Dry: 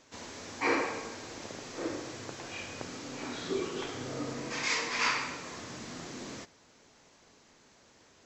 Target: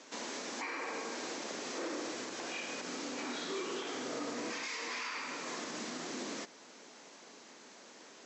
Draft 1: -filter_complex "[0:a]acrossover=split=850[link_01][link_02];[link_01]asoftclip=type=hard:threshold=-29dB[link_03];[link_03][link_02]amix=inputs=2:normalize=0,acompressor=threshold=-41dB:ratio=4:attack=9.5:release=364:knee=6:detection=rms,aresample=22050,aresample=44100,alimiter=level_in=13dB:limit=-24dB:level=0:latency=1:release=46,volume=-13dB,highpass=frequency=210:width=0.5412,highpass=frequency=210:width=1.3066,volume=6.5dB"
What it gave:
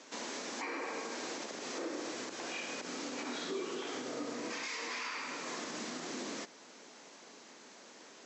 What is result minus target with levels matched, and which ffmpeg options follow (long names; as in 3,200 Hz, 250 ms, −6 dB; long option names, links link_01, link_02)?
hard clipping: distortion −9 dB
-filter_complex "[0:a]acrossover=split=850[link_01][link_02];[link_01]asoftclip=type=hard:threshold=-37.5dB[link_03];[link_03][link_02]amix=inputs=2:normalize=0,acompressor=threshold=-41dB:ratio=4:attack=9.5:release=364:knee=6:detection=rms,aresample=22050,aresample=44100,alimiter=level_in=13dB:limit=-24dB:level=0:latency=1:release=46,volume=-13dB,highpass=frequency=210:width=0.5412,highpass=frequency=210:width=1.3066,volume=6.5dB"